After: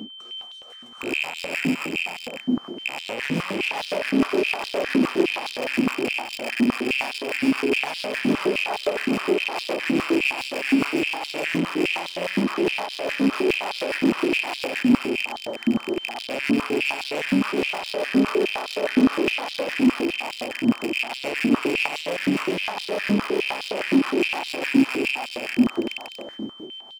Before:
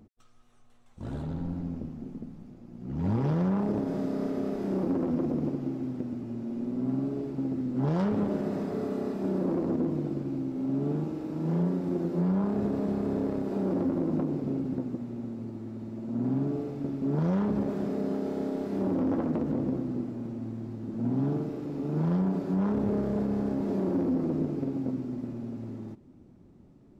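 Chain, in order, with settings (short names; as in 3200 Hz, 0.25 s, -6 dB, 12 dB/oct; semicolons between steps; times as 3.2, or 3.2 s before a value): rattling part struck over -35 dBFS, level -21 dBFS; in parallel at 0 dB: negative-ratio compressor -34 dBFS; on the sum: tremolo 7.1 Hz, depth 54%; soft clip -30.5 dBFS, distortion -8 dB; whine 3100 Hz -46 dBFS; tapped delay 0.423/0.517 s -4/-6.5 dB; stepped high-pass 9.7 Hz 250–3800 Hz; gain +6.5 dB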